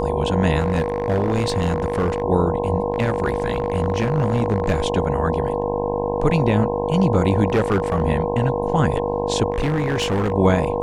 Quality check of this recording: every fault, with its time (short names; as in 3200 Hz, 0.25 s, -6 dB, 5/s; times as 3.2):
buzz 50 Hz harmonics 21 -25 dBFS
tone 480 Hz -23 dBFS
0.59–2.22 clipped -15 dBFS
2.92–4.84 clipped -13 dBFS
7.47–8.02 clipped -13.5 dBFS
9.52–10.33 clipped -17 dBFS